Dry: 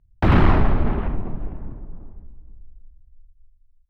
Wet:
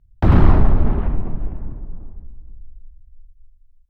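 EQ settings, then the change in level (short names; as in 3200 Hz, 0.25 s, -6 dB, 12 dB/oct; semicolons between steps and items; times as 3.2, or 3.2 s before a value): low shelf 140 Hz +5.5 dB; dynamic EQ 2500 Hz, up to -7 dB, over -40 dBFS, Q 0.77; 0.0 dB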